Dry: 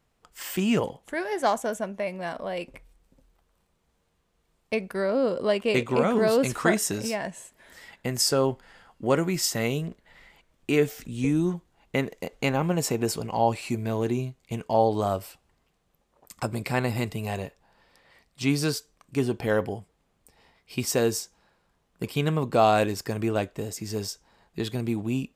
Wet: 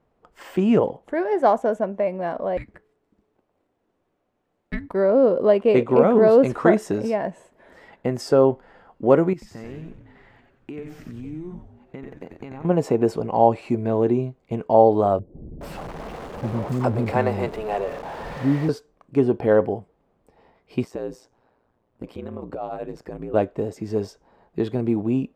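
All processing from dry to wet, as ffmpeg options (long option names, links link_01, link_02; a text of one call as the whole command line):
ffmpeg -i in.wav -filter_complex "[0:a]asettb=1/sr,asplit=3[link_01][link_02][link_03];[link_01]atrim=end=2.574[link_04];[link_02]atrim=start=2.57:end=4.94,asetpts=PTS-STARTPTS,afade=type=in:duration=0.004:curve=qsin,afade=type=out:start_time=2.366:duration=0.004:curve=qsin,highpass=frequency=460:poles=1,afreqshift=-470[link_05];[link_03]atrim=start=4.936[link_06];[link_04][link_05]acrossfade=duration=0.004:curve1=hsin:curve2=qsin[link_07];[link_07][link_06]acrossfade=duration=0.004:curve1=qsin:curve2=hsin,asettb=1/sr,asplit=3[link_08][link_09][link_10];[link_08]atrim=end=9.334[link_11];[link_09]atrim=start=9.33:end=12.65,asetpts=PTS-STARTPTS,afade=type=in:duration=0.004:curve=qsin,afade=type=out:start_time=3.316:duration=0.004:curve=qsin,equalizer=frequency=560:width_type=o:width=0.67:gain=-9.5,acompressor=threshold=-37dB:ratio=12:attack=3.2:release=140:knee=1:detection=peak,asplit=6[link_12][link_13][link_14][link_15][link_16][link_17];[link_13]adelay=90,afreqshift=-140,volume=-4dB[link_18];[link_14]adelay=180,afreqshift=-280,volume=-11.7dB[link_19];[link_15]adelay=270,afreqshift=-420,volume=-19.5dB[link_20];[link_16]adelay=360,afreqshift=-560,volume=-27.2dB[link_21];[link_17]adelay=450,afreqshift=-700,volume=-35dB[link_22];[link_12][link_18][link_19][link_20][link_21][link_22]amix=inputs=6:normalize=0,atrim=end_sample=146412[link_23];[link_10]atrim=start=12.646[link_24];[link_11][link_23]acrossfade=duration=0.004:curve1=hsin:curve2=qsin[link_25];[link_25][link_24]acrossfade=duration=0.004:curve1=qsin:curve2=hsin,asettb=1/sr,asplit=3[link_26][link_27][link_28];[link_26]atrim=end=15.194[link_29];[link_27]atrim=start=15.19:end=18.69,asetpts=PTS-STARTPTS,afade=type=in:duration=0.004:curve=qsin,afade=type=out:start_time=3.496:duration=0.004:curve=qsin,aeval=exprs='val(0)+0.5*0.0299*sgn(val(0))':channel_layout=same,acrossover=split=330[link_30][link_31];[link_31]adelay=420[link_32];[link_30][link_32]amix=inputs=2:normalize=0,atrim=end_sample=154350[link_33];[link_28]atrim=start=18.686[link_34];[link_29][link_33]acrossfade=duration=0.004:curve1=hsin:curve2=qsin[link_35];[link_35][link_34]acrossfade=duration=0.004:curve1=qsin:curve2=hsin,asettb=1/sr,asplit=3[link_36][link_37][link_38];[link_36]atrim=end=20.844[link_39];[link_37]atrim=start=20.84:end=23.34,asetpts=PTS-STARTPTS,afade=type=in:duration=0.004:curve=qsin,afade=type=out:start_time=2.496:duration=0.004:curve=qsin,acompressor=threshold=-34dB:ratio=4:attack=3.2:release=140:knee=1:detection=peak,aeval=exprs='val(0)*sin(2*PI*59*n/s)':channel_layout=same[link_40];[link_38]atrim=start=23.336[link_41];[link_39][link_40]acrossfade=duration=0.004:curve1=hsin:curve2=qsin[link_42];[link_42][link_41]acrossfade=duration=0.004:curve1=qsin:curve2=hsin,lowpass=frequency=1300:poles=1,equalizer=frequency=490:width_type=o:width=2.8:gain=9" out.wav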